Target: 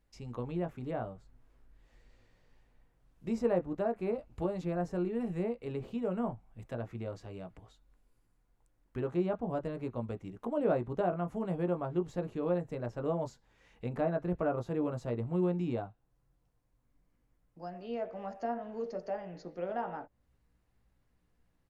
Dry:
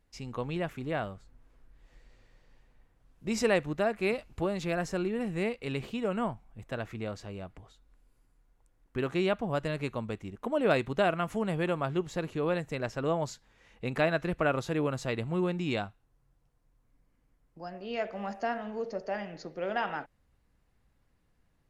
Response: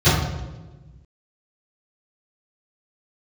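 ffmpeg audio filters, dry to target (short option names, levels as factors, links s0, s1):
-filter_complex "[0:a]acrossover=split=1100[s0][s1];[s0]asplit=2[s2][s3];[s3]adelay=17,volume=0.668[s4];[s2][s4]amix=inputs=2:normalize=0[s5];[s1]acompressor=threshold=0.00251:ratio=6[s6];[s5][s6]amix=inputs=2:normalize=0,volume=0.631"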